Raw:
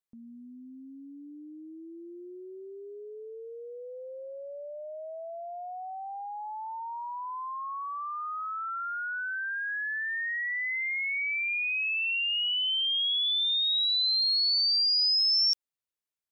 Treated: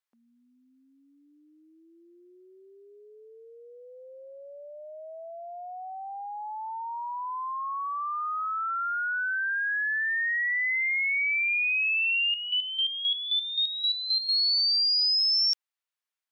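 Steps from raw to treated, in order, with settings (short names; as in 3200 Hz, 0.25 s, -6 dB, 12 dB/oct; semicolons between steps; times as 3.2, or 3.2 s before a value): HPF 1000 Hz 12 dB/oct; high shelf 4100 Hz -9.5 dB; 12.26–14.29 chopper 3.8 Hz, depth 65%, duty 30%; gain +6.5 dB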